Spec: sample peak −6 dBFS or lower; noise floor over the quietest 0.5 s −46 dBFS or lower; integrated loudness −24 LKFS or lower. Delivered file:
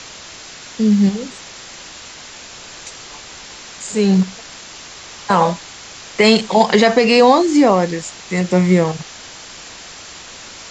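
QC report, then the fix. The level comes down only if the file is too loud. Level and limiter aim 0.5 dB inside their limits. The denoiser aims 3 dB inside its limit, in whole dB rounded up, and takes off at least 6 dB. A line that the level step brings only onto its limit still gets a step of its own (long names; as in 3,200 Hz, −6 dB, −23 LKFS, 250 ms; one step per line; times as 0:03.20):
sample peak −1.5 dBFS: out of spec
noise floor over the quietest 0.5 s −36 dBFS: out of spec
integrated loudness −14.5 LKFS: out of spec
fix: broadband denoise 6 dB, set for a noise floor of −36 dBFS
level −10 dB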